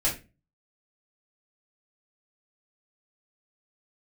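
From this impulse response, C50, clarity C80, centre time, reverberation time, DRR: 9.5 dB, 16.5 dB, 24 ms, 0.30 s, -6.5 dB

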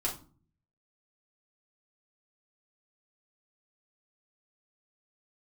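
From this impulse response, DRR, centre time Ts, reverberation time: -4.0 dB, 22 ms, not exponential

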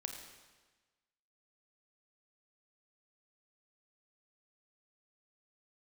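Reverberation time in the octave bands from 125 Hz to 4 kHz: 1.3, 1.3, 1.3, 1.3, 1.3, 1.2 s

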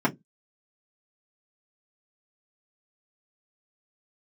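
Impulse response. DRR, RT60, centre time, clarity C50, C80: -5.0 dB, 0.15 s, 7 ms, 23.5 dB, 36.5 dB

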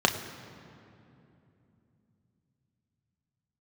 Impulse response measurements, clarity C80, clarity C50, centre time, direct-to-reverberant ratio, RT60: 10.5 dB, 10.0 dB, 27 ms, 3.5 dB, 2.9 s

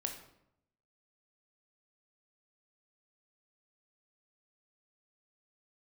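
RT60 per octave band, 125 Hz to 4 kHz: 1.0, 0.90, 0.80, 0.75, 0.60, 0.55 s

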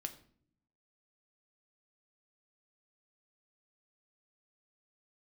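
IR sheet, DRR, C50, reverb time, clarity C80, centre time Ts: 6.5 dB, 14.0 dB, not exponential, 17.0 dB, 7 ms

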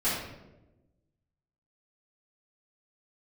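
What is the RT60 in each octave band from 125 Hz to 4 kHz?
1.5, 1.4, 1.2, 0.85, 0.75, 0.60 s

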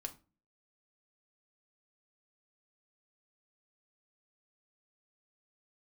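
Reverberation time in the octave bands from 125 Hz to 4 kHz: 0.50, 0.55, 0.35, 0.30, 0.25, 0.25 s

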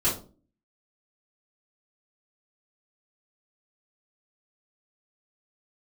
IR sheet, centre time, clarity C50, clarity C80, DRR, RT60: 29 ms, 7.5 dB, 14.0 dB, -10.5 dB, 0.40 s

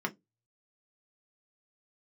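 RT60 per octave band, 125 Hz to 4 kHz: 0.30, 0.25, 0.20, 0.10, 0.10, 0.15 s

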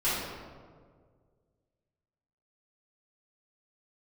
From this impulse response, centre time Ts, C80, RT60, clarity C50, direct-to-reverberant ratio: 0.1 s, 1.5 dB, 1.8 s, -1.5 dB, -13.0 dB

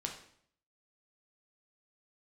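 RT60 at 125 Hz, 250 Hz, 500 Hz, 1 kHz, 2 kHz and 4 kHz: 0.80, 0.75, 0.65, 0.60, 0.60, 0.55 s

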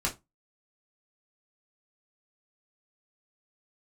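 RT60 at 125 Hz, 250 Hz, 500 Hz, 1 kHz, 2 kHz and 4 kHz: 0.25, 0.25, 0.20, 0.20, 0.15, 0.15 s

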